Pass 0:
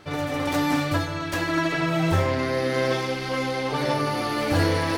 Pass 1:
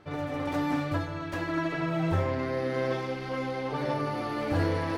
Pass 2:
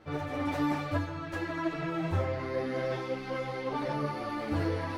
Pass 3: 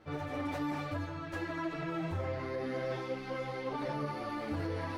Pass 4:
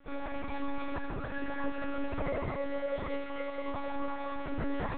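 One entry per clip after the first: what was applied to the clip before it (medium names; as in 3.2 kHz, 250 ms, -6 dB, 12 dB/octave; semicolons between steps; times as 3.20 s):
treble shelf 3 kHz -12 dB; trim -5 dB
gain riding 2 s; three-phase chorus
peak limiter -24.5 dBFS, peak gain reduction 5.5 dB; trim -3 dB
reverberation, pre-delay 3 ms, DRR 1 dB; monotone LPC vocoder at 8 kHz 280 Hz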